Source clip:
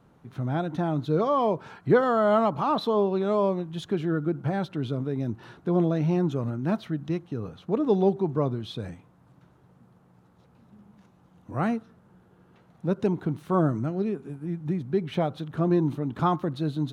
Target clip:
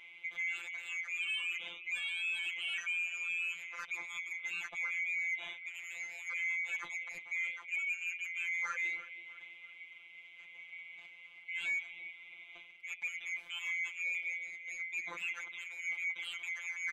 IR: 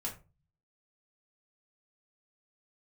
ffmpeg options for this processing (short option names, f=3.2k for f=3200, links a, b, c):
-filter_complex "[0:a]afftfilt=real='real(if(lt(b,920),b+92*(1-2*mod(floor(b/92),2)),b),0)':imag='imag(if(lt(b,920),b+92*(1-2*mod(floor(b/92),2)),b),0)':win_size=2048:overlap=0.75,areverse,acompressor=threshold=-34dB:ratio=6,areverse,asplit=2[a][b];[b]adelay=327,lowpass=f=2.4k:p=1,volume=-17dB,asplit=2[c][d];[d]adelay=327,lowpass=f=2.4k:p=1,volume=0.46,asplit=2[e][f];[f]adelay=327,lowpass=f=2.4k:p=1,volume=0.46,asplit=2[g][h];[h]adelay=327,lowpass=f=2.4k:p=1,volume=0.46[i];[a][c][e][g][i]amix=inputs=5:normalize=0,asplit=2[j][k];[k]aeval=exprs='0.0531*sin(PI/2*3.16*val(0)/0.0531)':c=same,volume=-10dB[l];[j][l]amix=inputs=2:normalize=0,afftfilt=real='hypot(re,im)*cos(PI*b)':imag='0':win_size=1024:overlap=0.75,asplit=2[m][n];[n]highpass=f=720:p=1,volume=11dB,asoftclip=type=tanh:threshold=-18.5dB[o];[m][o]amix=inputs=2:normalize=0,lowpass=f=1.3k:p=1,volume=-6dB"